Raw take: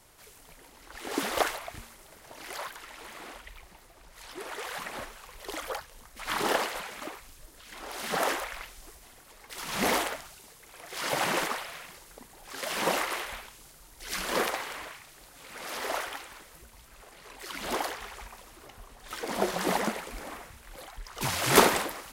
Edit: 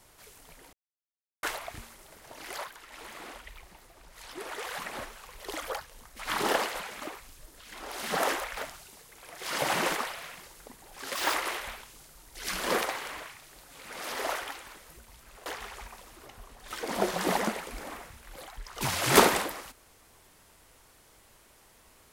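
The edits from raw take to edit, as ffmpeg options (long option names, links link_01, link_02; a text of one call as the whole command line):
ffmpeg -i in.wav -filter_complex "[0:a]asplit=9[link_01][link_02][link_03][link_04][link_05][link_06][link_07][link_08][link_09];[link_01]atrim=end=0.73,asetpts=PTS-STARTPTS,afade=type=out:start_time=0.726:duration=0.004:curve=hsin[link_10];[link_02]atrim=start=0.73:end=1.43,asetpts=PTS-STARTPTS,volume=0[link_11];[link_03]atrim=start=1.43:end=2.642,asetpts=PTS-STARTPTS,afade=type=in:duration=0.004:curve=hsin[link_12];[link_04]atrim=start=2.638:end=2.922,asetpts=PTS-STARTPTS,volume=-4.5dB[link_13];[link_05]atrim=start=2.918:end=8.572[link_14];[link_06]atrim=start=10.078:end=12.664[link_15];[link_07]atrim=start=12.66:end=12.99,asetpts=PTS-STARTPTS,asetrate=76734,aresample=44100[link_16];[link_08]atrim=start=12.986:end=17.112[link_17];[link_09]atrim=start=17.858[link_18];[link_10][link_11][link_12]concat=n=3:v=0:a=1[link_19];[link_19][link_13]acrossfade=duration=0.004:curve1=hsin:curve2=hsin[link_20];[link_20][link_14]acrossfade=duration=0.004:curve1=hsin:curve2=hsin[link_21];[link_21][link_15]acrossfade=duration=0.004:curve1=hsin:curve2=hsin[link_22];[link_22][link_16]acrossfade=duration=0.004:curve1=hsin:curve2=hsin[link_23];[link_23][link_17]acrossfade=duration=0.004:curve1=hsin:curve2=hsin[link_24];[link_24][link_18]acrossfade=duration=0.004:curve1=hsin:curve2=hsin" out.wav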